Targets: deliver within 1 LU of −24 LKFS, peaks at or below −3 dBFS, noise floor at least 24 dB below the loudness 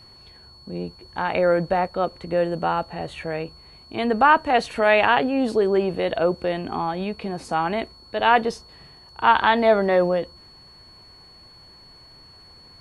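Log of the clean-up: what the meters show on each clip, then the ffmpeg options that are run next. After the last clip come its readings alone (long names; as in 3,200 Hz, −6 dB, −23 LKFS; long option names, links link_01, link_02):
interfering tone 4,400 Hz; level of the tone −47 dBFS; integrated loudness −21.5 LKFS; sample peak −3.5 dBFS; target loudness −24.0 LKFS
→ -af "bandreject=frequency=4400:width=30"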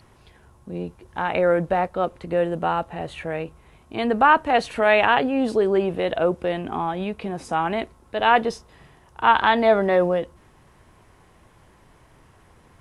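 interfering tone none found; integrated loudness −21.5 LKFS; sample peak −4.0 dBFS; target loudness −24.0 LKFS
→ -af "volume=-2.5dB"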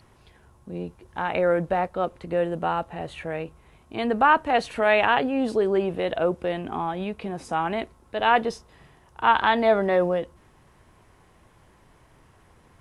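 integrated loudness −24.0 LKFS; sample peak −6.5 dBFS; background noise floor −57 dBFS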